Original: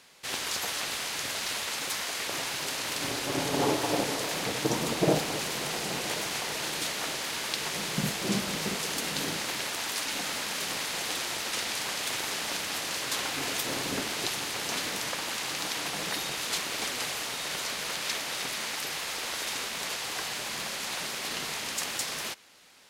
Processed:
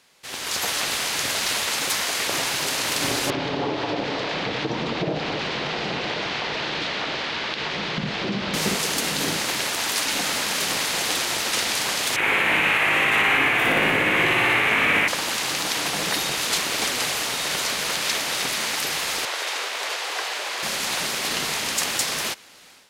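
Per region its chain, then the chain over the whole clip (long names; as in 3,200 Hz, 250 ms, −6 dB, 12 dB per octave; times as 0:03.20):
0:03.30–0:08.54: low-pass filter 4,200 Hz 24 dB per octave + downward compressor 4 to 1, threshold −31 dBFS
0:12.16–0:15.08: high shelf with overshoot 3,400 Hz −13.5 dB, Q 3 + double-tracking delay 19 ms −4 dB + flutter between parallel walls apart 10 metres, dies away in 1.5 s
0:19.25–0:20.63: high-pass filter 400 Hz 24 dB per octave + high-shelf EQ 6,000 Hz −11 dB
whole clip: automatic gain control gain up to 11 dB; boost into a limiter +6 dB; level −8.5 dB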